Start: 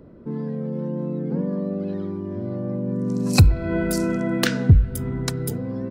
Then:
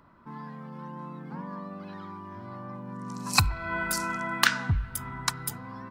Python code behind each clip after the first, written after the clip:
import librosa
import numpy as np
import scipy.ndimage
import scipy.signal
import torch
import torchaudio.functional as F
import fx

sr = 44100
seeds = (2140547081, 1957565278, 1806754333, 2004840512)

y = fx.low_shelf_res(x, sr, hz=690.0, db=-13.0, q=3.0)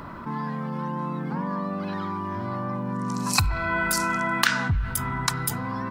y = fx.env_flatten(x, sr, amount_pct=50)
y = y * 10.0 ** (-1.0 / 20.0)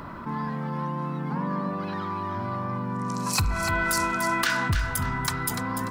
y = 10.0 ** (-16.0 / 20.0) * np.tanh(x / 10.0 ** (-16.0 / 20.0))
y = fx.echo_feedback(y, sr, ms=294, feedback_pct=29, wet_db=-8.0)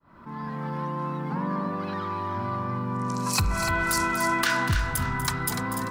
y = fx.fade_in_head(x, sr, length_s=0.68)
y = y + 10.0 ** (-11.0 / 20.0) * np.pad(y, (int(243 * sr / 1000.0), 0))[:len(y)]